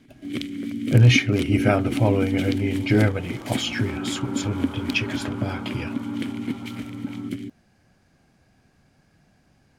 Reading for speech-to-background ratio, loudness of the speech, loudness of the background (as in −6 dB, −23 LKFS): 6.0 dB, −23.0 LKFS, −29.0 LKFS